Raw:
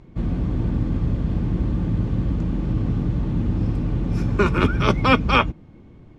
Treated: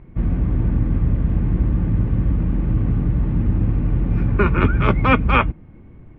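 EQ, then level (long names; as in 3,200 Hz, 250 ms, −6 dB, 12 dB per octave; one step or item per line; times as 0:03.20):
transistor ladder low-pass 2,800 Hz, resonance 30%
low-shelf EQ 110 Hz +8 dB
+6.0 dB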